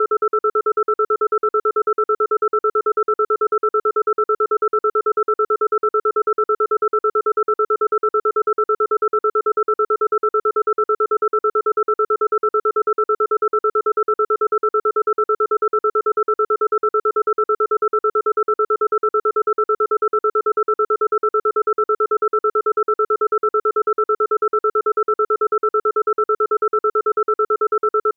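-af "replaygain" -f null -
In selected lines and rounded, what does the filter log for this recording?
track_gain = +1.6 dB
track_peak = 0.232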